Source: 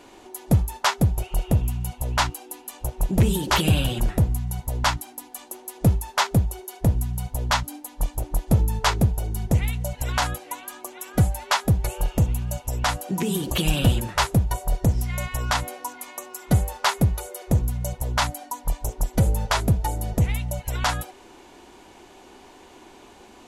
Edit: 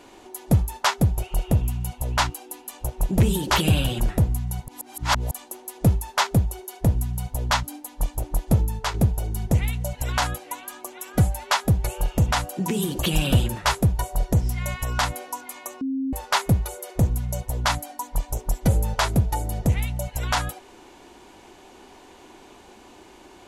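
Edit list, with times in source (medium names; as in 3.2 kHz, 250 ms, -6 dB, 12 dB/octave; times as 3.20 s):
4.68–5.31 s: reverse
8.51–8.94 s: fade out, to -8 dB
12.31–12.83 s: delete
16.33–16.65 s: bleep 267 Hz -23 dBFS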